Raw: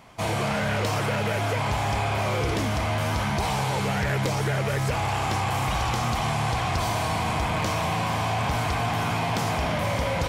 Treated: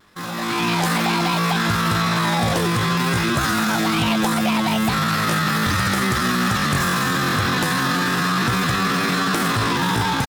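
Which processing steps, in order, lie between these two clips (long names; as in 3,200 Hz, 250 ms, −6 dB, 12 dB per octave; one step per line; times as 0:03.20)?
pitch shifter +8.5 semitones
automatic gain control gain up to 10 dB
pitch vibrato 0.35 Hz 11 cents
level −4 dB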